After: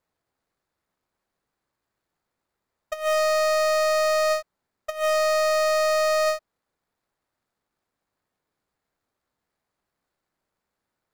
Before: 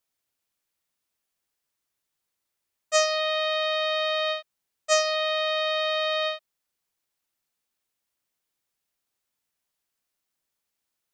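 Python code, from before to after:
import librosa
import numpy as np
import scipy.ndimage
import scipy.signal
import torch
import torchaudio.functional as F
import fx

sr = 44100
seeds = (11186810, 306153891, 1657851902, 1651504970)

y = scipy.signal.medfilt(x, 15)
y = fx.over_compress(y, sr, threshold_db=-29.0, ratio=-0.5)
y = y * librosa.db_to_amplitude(7.5)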